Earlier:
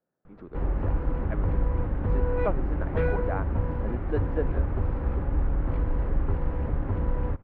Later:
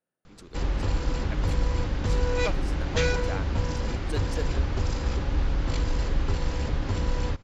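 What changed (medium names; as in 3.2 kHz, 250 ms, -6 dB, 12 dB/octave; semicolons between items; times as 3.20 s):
speech -6.0 dB; master: remove Bessel low-pass 1.2 kHz, order 4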